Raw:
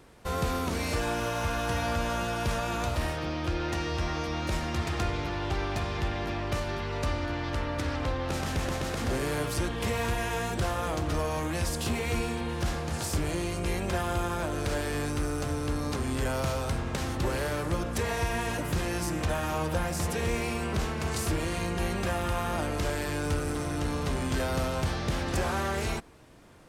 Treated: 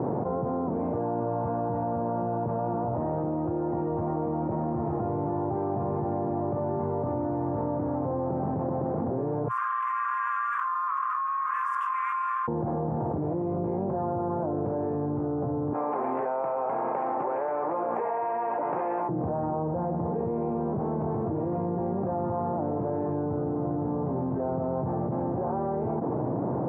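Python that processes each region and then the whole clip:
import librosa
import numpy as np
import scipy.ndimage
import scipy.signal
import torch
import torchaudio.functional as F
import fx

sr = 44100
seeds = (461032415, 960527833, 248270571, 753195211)

y = fx.chain(x, sr, fx.brickwall_highpass(low_hz=1000.0),
    fx.high_shelf(hz=8600.0, db=5.5),
    fx.env_flatten(amount_pct=50), at=(9.48, 12.48))
y = fx.chain(y, sr, fx.highpass(hz=850.0, slope=12),
    fx.peak_eq(hz=2300.0, db=9.0, octaves=0.56), at=(15.73, 19.09))
y = scipy.signal.sosfilt(scipy.signal.ellip(3, 1.0, 60, [120.0, 870.0], 'bandpass', fs=sr, output='sos'), y)
y = fx.env_flatten(y, sr, amount_pct=100)
y = y * librosa.db_to_amplitude(-1.0)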